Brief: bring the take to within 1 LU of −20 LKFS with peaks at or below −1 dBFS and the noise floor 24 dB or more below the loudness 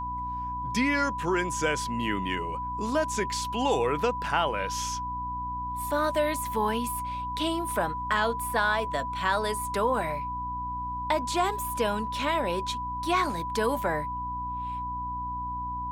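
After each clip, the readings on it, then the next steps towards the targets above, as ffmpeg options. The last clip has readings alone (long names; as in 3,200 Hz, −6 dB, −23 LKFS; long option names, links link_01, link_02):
mains hum 60 Hz; hum harmonics up to 300 Hz; level of the hum −37 dBFS; interfering tone 990 Hz; level of the tone −31 dBFS; integrated loudness −28.5 LKFS; sample peak −11.0 dBFS; target loudness −20.0 LKFS
→ -af "bandreject=frequency=60:width_type=h:width=4,bandreject=frequency=120:width_type=h:width=4,bandreject=frequency=180:width_type=h:width=4,bandreject=frequency=240:width_type=h:width=4,bandreject=frequency=300:width_type=h:width=4"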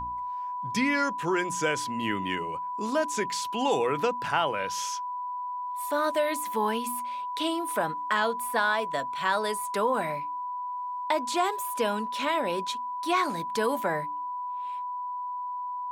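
mains hum none found; interfering tone 990 Hz; level of the tone −31 dBFS
→ -af "bandreject=frequency=990:width=30"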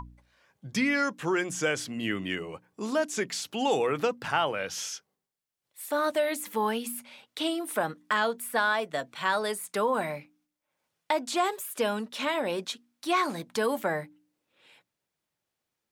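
interfering tone none found; integrated loudness −29.5 LKFS; sample peak −11.5 dBFS; target loudness −20.0 LKFS
→ -af "volume=9.5dB"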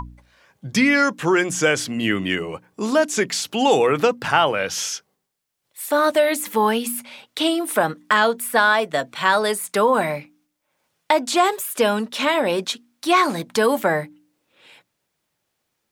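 integrated loudness −20.0 LKFS; sample peak −2.0 dBFS; background noise floor −76 dBFS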